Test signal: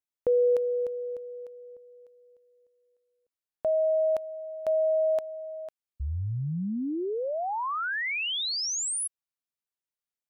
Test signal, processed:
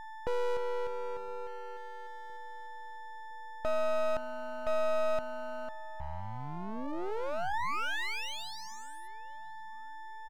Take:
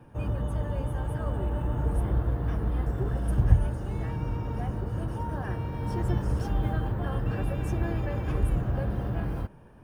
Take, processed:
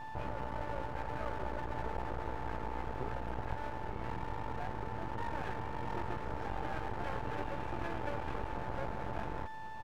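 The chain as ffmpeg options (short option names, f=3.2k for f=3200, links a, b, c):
-filter_complex "[0:a]lowpass=2.1k,acrossover=split=350|660[a][b][c];[a]acompressor=threshold=-39dB:ratio=6:release=212[d];[b]asoftclip=type=tanh:threshold=-36dB[e];[d][e][c]amix=inputs=3:normalize=0,aeval=exprs='val(0)+0.01*sin(2*PI*880*n/s)':c=same,aeval=exprs='max(val(0),0)':c=same,asplit=2[f][g];[g]adelay=1014,lowpass=f=880:p=1,volume=-21.5dB,asplit=2[h][i];[i]adelay=1014,lowpass=f=880:p=1,volume=0.47,asplit=2[j][k];[k]adelay=1014,lowpass=f=880:p=1,volume=0.47[l];[f][h][j][l]amix=inputs=4:normalize=0,volume=1.5dB"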